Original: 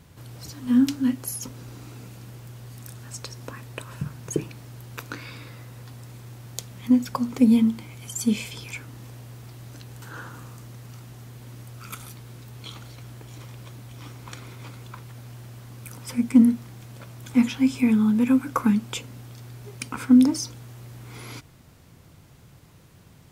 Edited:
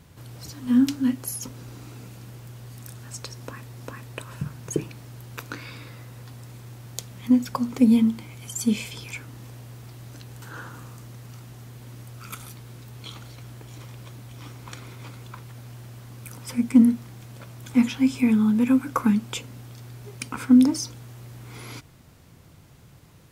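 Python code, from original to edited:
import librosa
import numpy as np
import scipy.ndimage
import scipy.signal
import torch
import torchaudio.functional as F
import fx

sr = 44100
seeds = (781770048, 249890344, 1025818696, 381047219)

y = fx.edit(x, sr, fx.repeat(start_s=3.37, length_s=0.4, count=2), tone=tone)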